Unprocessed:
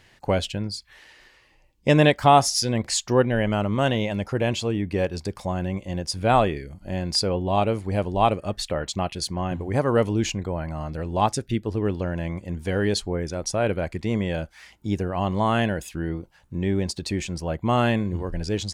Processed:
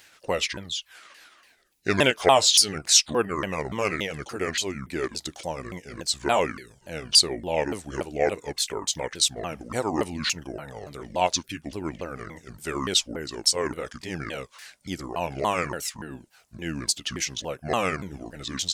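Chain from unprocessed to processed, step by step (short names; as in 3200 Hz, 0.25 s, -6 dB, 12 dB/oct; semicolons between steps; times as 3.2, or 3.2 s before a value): repeated pitch sweeps -9 st, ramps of 0.286 s; RIAA curve recording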